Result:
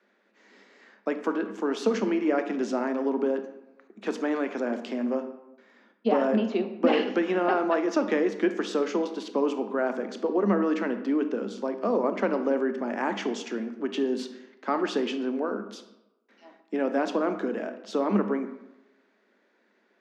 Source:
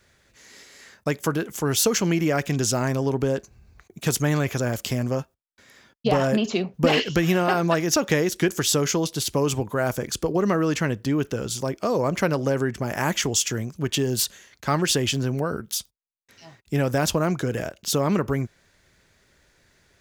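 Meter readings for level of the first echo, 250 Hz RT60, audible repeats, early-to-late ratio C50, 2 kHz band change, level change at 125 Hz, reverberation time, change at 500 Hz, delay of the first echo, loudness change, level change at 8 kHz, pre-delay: no echo, 0.85 s, no echo, 10.0 dB, -6.0 dB, under -15 dB, 1.0 s, -1.5 dB, no echo, -4.0 dB, -22.5 dB, 22 ms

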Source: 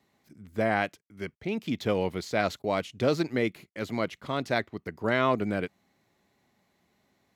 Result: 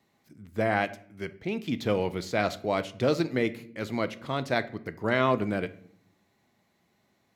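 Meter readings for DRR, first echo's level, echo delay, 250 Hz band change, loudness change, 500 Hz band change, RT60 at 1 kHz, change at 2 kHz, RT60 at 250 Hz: 11.5 dB, no echo, no echo, +0.5 dB, +0.5 dB, +0.5 dB, 0.50 s, 0.0 dB, 0.95 s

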